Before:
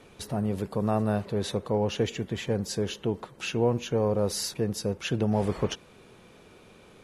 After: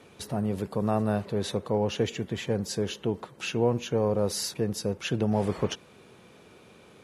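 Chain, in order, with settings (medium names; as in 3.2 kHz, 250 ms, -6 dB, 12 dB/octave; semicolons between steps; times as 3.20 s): high-pass 74 Hz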